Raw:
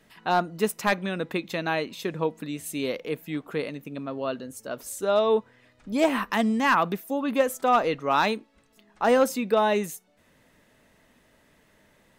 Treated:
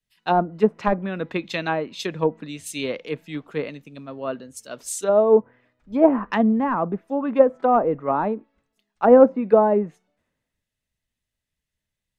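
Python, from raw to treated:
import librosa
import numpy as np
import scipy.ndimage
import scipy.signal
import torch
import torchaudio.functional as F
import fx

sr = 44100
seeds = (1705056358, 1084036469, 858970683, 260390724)

y = fx.env_lowpass_down(x, sr, base_hz=760.0, full_db=-20.5)
y = fx.band_widen(y, sr, depth_pct=100)
y = y * librosa.db_to_amplitude(4.5)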